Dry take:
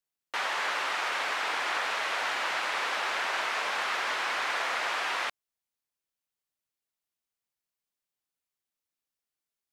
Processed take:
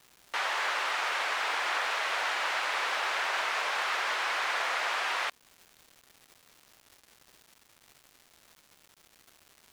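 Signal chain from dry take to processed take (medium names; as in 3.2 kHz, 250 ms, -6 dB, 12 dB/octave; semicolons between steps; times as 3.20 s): high-pass 370 Hz 12 dB/octave; crackle 480 per s -44 dBFS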